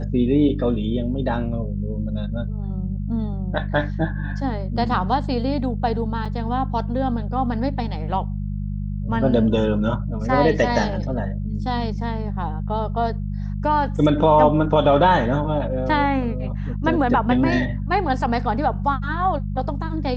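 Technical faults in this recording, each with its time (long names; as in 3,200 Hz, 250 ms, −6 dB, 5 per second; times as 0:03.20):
mains hum 50 Hz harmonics 4 −26 dBFS
0:06.25–0:06.26: drop-out 5.4 ms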